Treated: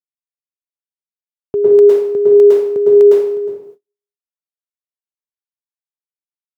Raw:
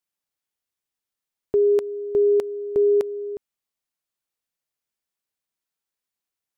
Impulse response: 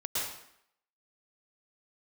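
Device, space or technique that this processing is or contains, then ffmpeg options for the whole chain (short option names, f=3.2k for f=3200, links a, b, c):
far laptop microphone: -filter_complex "[1:a]atrim=start_sample=2205[a];[0:a][a]afir=irnorm=-1:irlink=0,highpass=f=110:w=0.5412,highpass=f=110:w=1.3066,dynaudnorm=f=110:g=11:m=14.5dB,agate=range=-36dB:threshold=-37dB:ratio=16:detection=peak,volume=-1dB"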